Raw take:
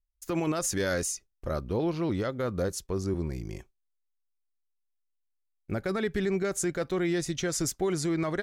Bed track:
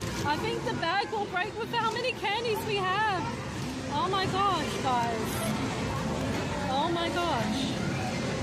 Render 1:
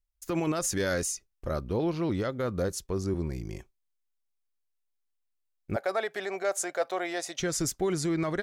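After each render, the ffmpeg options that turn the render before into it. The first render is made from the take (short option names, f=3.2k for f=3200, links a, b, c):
-filter_complex "[0:a]asettb=1/sr,asplit=3[a][b][c];[a]atrim=end=5.764[d];[b]atrim=start=5.76:end=7.4,asetpts=PTS-STARTPTS,afade=t=in:d=0.004:c=qsin,afade=t=out:st=1.636:d=0.004:c=qsin,highpass=f=670:t=q:w=3.8[e];[c]atrim=start=7.396[f];[d][e]acrossfade=d=0.004:c1=hsin:c2=qsin[g];[g][f]acrossfade=d=0.004:c1=qsin:c2=hsin"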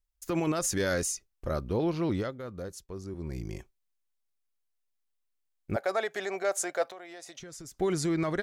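-filter_complex "[0:a]asettb=1/sr,asplit=3[a][b][c];[a]atrim=end=5.874[d];[b]atrim=start=5.87:end=6.3,asetpts=PTS-STARTPTS,afade=t=in:d=0.004:c=qsin,afade=t=out:st=0.426:d=0.004:c=qsin,equalizer=f=6.7k:w=6.5:g=10.5[e];[c]atrim=start=6.296[f];[d][e]acrossfade=d=0.004:c1=hsin:c2=qsin[g];[g][f]acrossfade=d=0.004:c1=qsin:c2=hsin,asettb=1/sr,asplit=3[h][i][j];[h]atrim=end=6.844[k];[i]atrim=start=6.84:end=7.8,asetpts=PTS-STARTPTS,afade=t=in:d=0.004:c=qsin,afade=t=out:st=0.956:d=0.004:c=qsin,acompressor=threshold=-42dB:ratio=8:attack=3.2:release=140:knee=1:detection=peak[l];[j]atrim=start=7.796[m];[k][l]acrossfade=d=0.004:c1=hsin:c2=qsin[n];[n][m]acrossfade=d=0.004:c1=qsin:c2=hsin,asplit=3[o][p][q];[o]atrim=end=2.39,asetpts=PTS-STARTPTS,afade=t=out:st=2.16:d=0.23:silence=0.334965[r];[p]atrim=start=2.39:end=3.17,asetpts=PTS-STARTPTS,volume=-9.5dB[s];[q]atrim=start=3.17,asetpts=PTS-STARTPTS,afade=t=in:d=0.23:silence=0.334965[t];[r][s][t]concat=n=3:v=0:a=1"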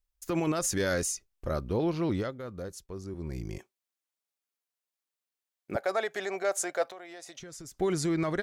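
-filter_complex "[0:a]asettb=1/sr,asplit=3[a][b][c];[a]atrim=end=3.584[d];[b]atrim=start=3.58:end=5.75,asetpts=PTS-STARTPTS,afade=t=in:d=0.004:c=qsin,afade=t=out:st=2.166:d=0.004:c=qsin,highpass=270[e];[c]atrim=start=5.746[f];[d][e]acrossfade=d=0.004:c1=hsin:c2=qsin[g];[g][f]acrossfade=d=0.004:c1=qsin:c2=hsin"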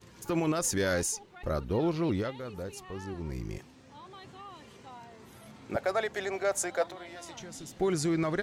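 -filter_complex "[1:a]volume=-21dB[a];[0:a][a]amix=inputs=2:normalize=0"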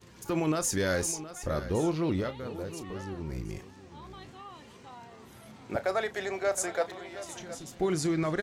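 -filter_complex "[0:a]asplit=2[a][b];[b]adelay=32,volume=-13dB[c];[a][c]amix=inputs=2:normalize=0,aecho=1:1:719:0.2"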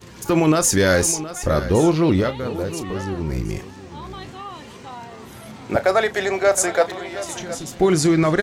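-af "volume=12dB"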